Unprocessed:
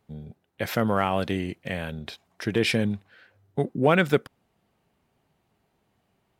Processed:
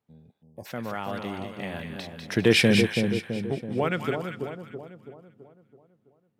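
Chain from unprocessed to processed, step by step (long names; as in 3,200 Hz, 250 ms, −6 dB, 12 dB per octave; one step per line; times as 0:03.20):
source passing by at 0:02.57, 15 m/s, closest 5.2 metres
high-pass filter 74 Hz
echo with a time of its own for lows and highs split 960 Hz, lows 330 ms, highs 197 ms, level −5 dB
gain on a spectral selection 0:00.42–0:00.66, 1,100–4,700 Hz −28 dB
level +4.5 dB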